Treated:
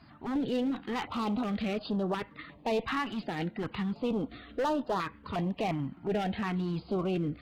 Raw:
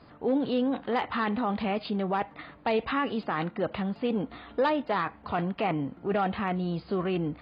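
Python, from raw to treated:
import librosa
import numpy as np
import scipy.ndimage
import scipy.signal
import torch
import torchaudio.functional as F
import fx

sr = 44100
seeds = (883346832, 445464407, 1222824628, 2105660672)

y = fx.spec_quant(x, sr, step_db=15)
y = fx.clip_asym(y, sr, top_db=-27.5, bottom_db=-22.0)
y = fx.filter_held_notch(y, sr, hz=2.8, low_hz=480.0, high_hz=2200.0)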